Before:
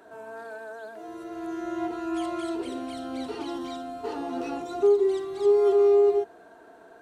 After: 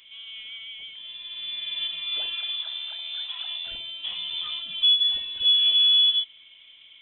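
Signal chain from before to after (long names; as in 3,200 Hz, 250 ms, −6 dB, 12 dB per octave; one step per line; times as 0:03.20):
voice inversion scrambler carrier 3,800 Hz
0:02.34–0:03.67: high-pass filter 800 Hz 24 dB per octave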